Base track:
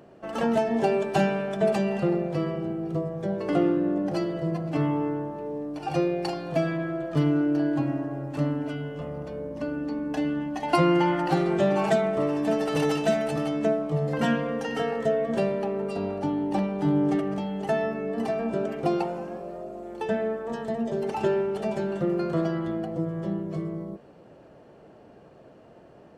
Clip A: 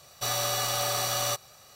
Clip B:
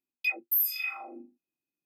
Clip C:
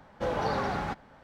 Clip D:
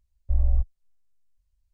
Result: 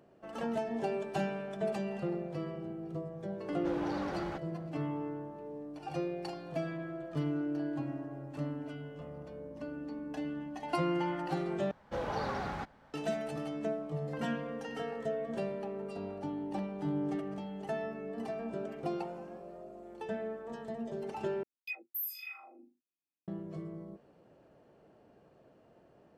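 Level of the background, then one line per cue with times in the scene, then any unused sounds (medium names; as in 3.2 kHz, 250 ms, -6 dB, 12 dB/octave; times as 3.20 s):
base track -11 dB
3.44 s: add C -7.5 dB + saturation -26.5 dBFS
11.71 s: replace with C -6 dB
21.43 s: replace with B -11.5 dB
not used: A, D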